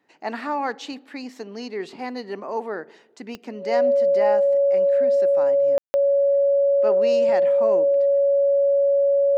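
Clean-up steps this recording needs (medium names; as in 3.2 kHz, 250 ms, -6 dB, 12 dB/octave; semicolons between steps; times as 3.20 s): de-click; band-stop 560 Hz, Q 30; room tone fill 5.78–5.94 s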